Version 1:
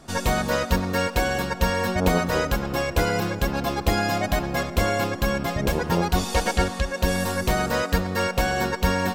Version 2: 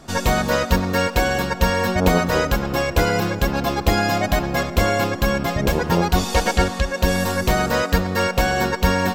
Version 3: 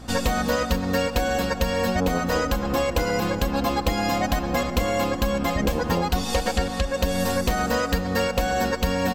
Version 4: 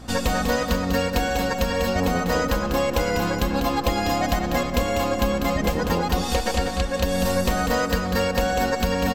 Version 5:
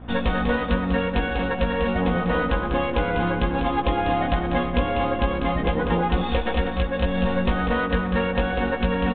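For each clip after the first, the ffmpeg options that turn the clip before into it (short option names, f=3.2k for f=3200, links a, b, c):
-af "equalizer=f=9.5k:w=5.9:g=-8,volume=4dB"
-af "aecho=1:1:3.9:0.57,acompressor=threshold=-19dB:ratio=6,aeval=exprs='val(0)+0.01*(sin(2*PI*60*n/s)+sin(2*PI*2*60*n/s)/2+sin(2*PI*3*60*n/s)/3+sin(2*PI*4*60*n/s)/4+sin(2*PI*5*60*n/s)/5)':c=same"
-af "aecho=1:1:196:0.473"
-filter_complex "[0:a]adynamicsmooth=sensitivity=7.5:basefreq=1.8k,asplit=2[a][b];[b]adelay=17,volume=-5dB[c];[a][c]amix=inputs=2:normalize=0,aresample=8000,aresample=44100,volume=-1dB"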